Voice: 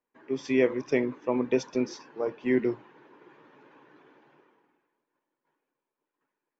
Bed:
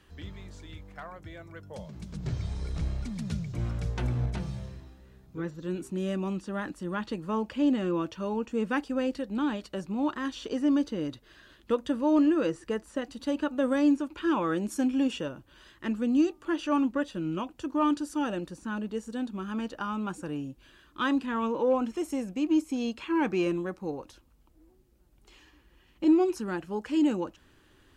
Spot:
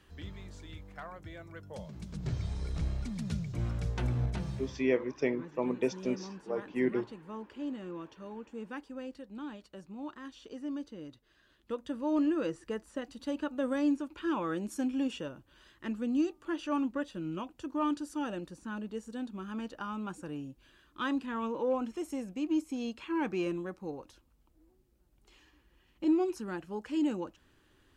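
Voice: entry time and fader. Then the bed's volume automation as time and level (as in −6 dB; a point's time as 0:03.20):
4.30 s, −5.0 dB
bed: 0:04.68 −2 dB
0:04.96 −13 dB
0:11.35 −13 dB
0:12.24 −5.5 dB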